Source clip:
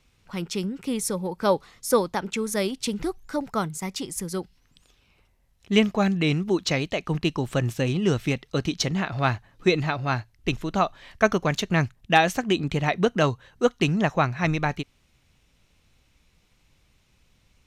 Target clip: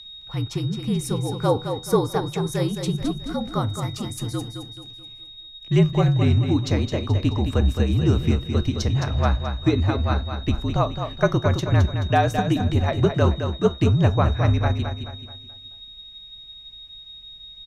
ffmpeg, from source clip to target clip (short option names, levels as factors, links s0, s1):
-filter_complex "[0:a]bass=f=250:g=7,treble=f=4000:g=-5,acrossover=split=290|1700|4200[s0][s1][s2][s3];[s2]acompressor=threshold=0.00355:ratio=6[s4];[s0][s1][s4][s3]amix=inputs=4:normalize=0,aeval=exprs='val(0)+0.0126*sin(2*PI*3800*n/s)':c=same,afreqshift=-54,flanger=delay=9.4:depth=2.2:regen=-77:speed=0.36:shape=triangular,aecho=1:1:215|430|645|860|1075:0.422|0.169|0.0675|0.027|0.0108,volume=1.68"